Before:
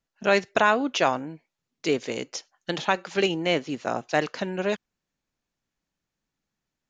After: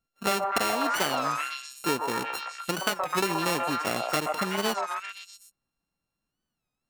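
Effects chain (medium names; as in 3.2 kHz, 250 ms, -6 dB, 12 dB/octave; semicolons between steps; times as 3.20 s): sorted samples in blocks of 32 samples; on a send: repeats whose band climbs or falls 125 ms, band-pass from 820 Hz, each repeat 0.7 oct, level 0 dB; on the sum: compression 6:1, threshold -22 dBFS, peak gain reduction 8 dB; warped record 33 1/3 rpm, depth 160 cents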